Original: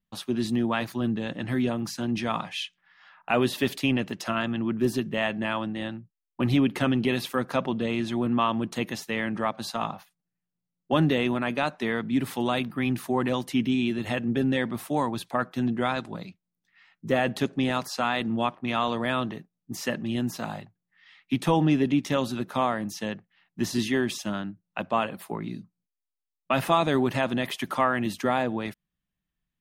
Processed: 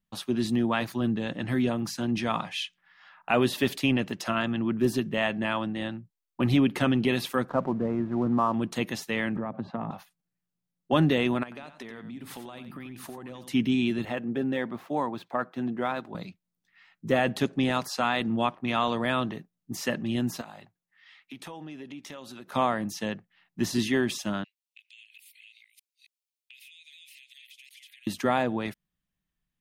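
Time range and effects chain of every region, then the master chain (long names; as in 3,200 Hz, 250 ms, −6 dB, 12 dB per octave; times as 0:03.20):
0:07.49–0:08.54: low-pass filter 1,400 Hz 24 dB per octave + slack as between gear wheels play −43.5 dBFS
0:09.36–0:09.91: spectral tilt −4.5 dB per octave + downward compressor 12 to 1, threshold −26 dBFS + band-pass filter 130–2,200 Hz
0:11.43–0:13.53: downward compressor 16 to 1, threshold −37 dBFS + single-tap delay 89 ms −10 dB
0:14.05–0:16.15: running median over 5 samples + high-pass filter 310 Hz 6 dB per octave + high-shelf EQ 2,300 Hz −10.5 dB
0:20.41–0:22.52: low-shelf EQ 240 Hz −11.5 dB + downward compressor 4 to 1, threshold −41 dBFS
0:24.44–0:28.07: delay that plays each chunk backwards 271 ms, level 0 dB + Butterworth high-pass 2,200 Hz 72 dB per octave + downward compressor 8 to 1, threshold −49 dBFS
whole clip: no processing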